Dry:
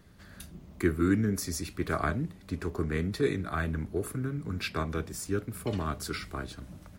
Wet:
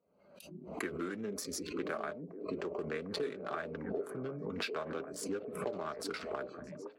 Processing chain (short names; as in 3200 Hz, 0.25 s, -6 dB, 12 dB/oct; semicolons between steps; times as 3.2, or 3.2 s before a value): Wiener smoothing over 25 samples; weighting filter A; spectral noise reduction 26 dB; bell 550 Hz +12.5 dB 0.57 oct; compressor 6:1, threshold -45 dBFS, peak gain reduction 20.5 dB; flange 1.3 Hz, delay 4.1 ms, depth 1.3 ms, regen -49%; on a send: delay with a stepping band-pass 0.751 s, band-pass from 320 Hz, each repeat 0.7 oct, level -7 dB; on the sum: backwards sustainer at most 70 dB/s; gain +12 dB